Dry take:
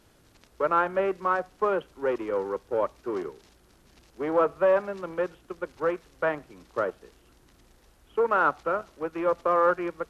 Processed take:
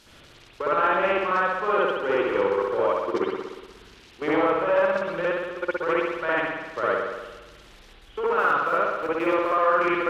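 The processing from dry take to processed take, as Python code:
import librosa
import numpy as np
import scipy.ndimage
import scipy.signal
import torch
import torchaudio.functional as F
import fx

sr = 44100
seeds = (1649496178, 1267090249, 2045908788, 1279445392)

y = fx.block_float(x, sr, bits=7, at=(8.39, 9.56))
y = fx.peak_eq(y, sr, hz=4000.0, db=13.0, octaves=2.6)
y = fx.level_steps(y, sr, step_db=14)
y = fx.rev_spring(y, sr, rt60_s=1.2, pass_ms=(60,), chirp_ms=75, drr_db=-7.5)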